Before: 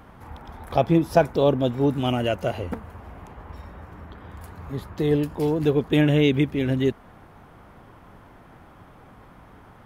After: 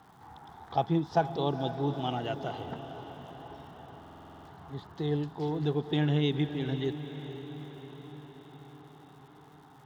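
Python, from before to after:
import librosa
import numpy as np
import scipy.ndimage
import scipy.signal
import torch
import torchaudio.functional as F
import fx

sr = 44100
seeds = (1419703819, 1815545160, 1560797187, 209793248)

p1 = fx.cabinet(x, sr, low_hz=130.0, low_slope=12, high_hz=6100.0, hz=(150.0, 230.0, 560.0, 800.0, 2400.0, 3600.0), db=(5, -6, -10, 8, -9, 6))
p2 = p1 + fx.echo_diffused(p1, sr, ms=472, feedback_pct=62, wet_db=-11, dry=0)
p3 = fx.dmg_crackle(p2, sr, seeds[0], per_s=300.0, level_db=-46.0)
p4 = fx.buffer_glitch(p3, sr, at_s=(3.99,), block=2048, repeats=9)
y = F.gain(torch.from_numpy(p4), -8.5).numpy()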